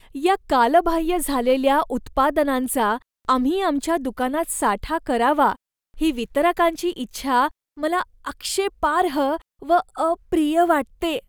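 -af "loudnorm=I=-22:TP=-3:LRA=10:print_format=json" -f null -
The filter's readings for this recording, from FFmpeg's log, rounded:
"input_i" : "-21.5",
"input_tp" : "-6.3",
"input_lra" : "1.4",
"input_thresh" : "-31.6",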